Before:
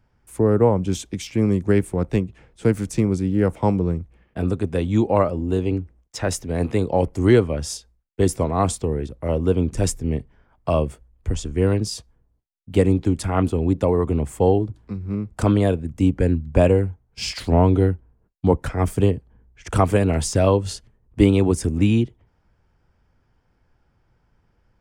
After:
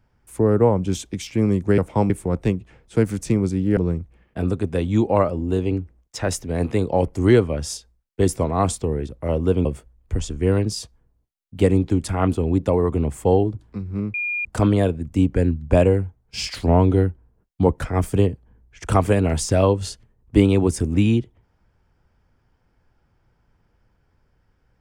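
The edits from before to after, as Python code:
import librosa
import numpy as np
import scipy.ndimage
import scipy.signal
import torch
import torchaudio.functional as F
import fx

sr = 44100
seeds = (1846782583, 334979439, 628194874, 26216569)

y = fx.edit(x, sr, fx.move(start_s=3.45, length_s=0.32, to_s=1.78),
    fx.cut(start_s=9.65, length_s=1.15),
    fx.insert_tone(at_s=15.29, length_s=0.31, hz=2420.0, db=-22.0), tone=tone)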